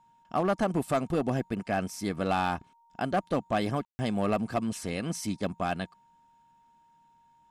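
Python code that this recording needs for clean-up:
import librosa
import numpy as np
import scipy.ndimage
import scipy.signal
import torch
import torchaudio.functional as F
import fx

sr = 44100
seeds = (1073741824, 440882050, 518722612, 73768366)

y = fx.fix_declip(x, sr, threshold_db=-19.5)
y = fx.notch(y, sr, hz=930.0, q=30.0)
y = fx.fix_ambience(y, sr, seeds[0], print_start_s=6.43, print_end_s=6.93, start_s=3.85, end_s=3.99)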